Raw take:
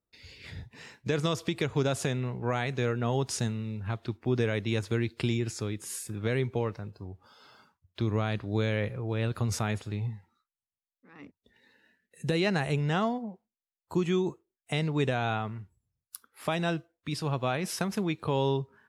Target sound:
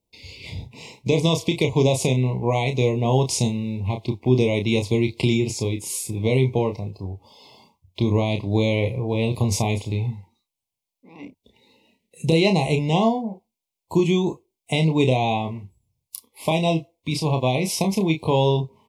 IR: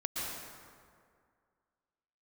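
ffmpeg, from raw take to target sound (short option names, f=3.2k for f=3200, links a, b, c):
-filter_complex "[0:a]asuperstop=centerf=1500:order=12:qfactor=1.5,asplit=2[a][b];[b]adelay=31,volume=-6.5dB[c];[a][c]amix=inputs=2:normalize=0,volume=8.5dB"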